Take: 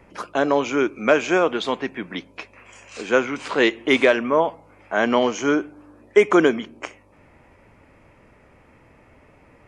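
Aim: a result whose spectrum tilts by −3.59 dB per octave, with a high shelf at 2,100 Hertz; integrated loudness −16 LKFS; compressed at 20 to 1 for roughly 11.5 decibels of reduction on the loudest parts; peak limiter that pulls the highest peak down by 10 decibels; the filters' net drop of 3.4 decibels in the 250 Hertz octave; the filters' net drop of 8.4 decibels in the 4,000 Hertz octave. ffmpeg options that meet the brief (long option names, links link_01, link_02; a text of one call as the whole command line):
ffmpeg -i in.wav -af "equalizer=frequency=250:width_type=o:gain=-4.5,highshelf=frequency=2100:gain=-4,equalizer=frequency=4000:width_type=o:gain=-8,acompressor=threshold=-21dB:ratio=20,volume=16.5dB,alimiter=limit=-4dB:level=0:latency=1" out.wav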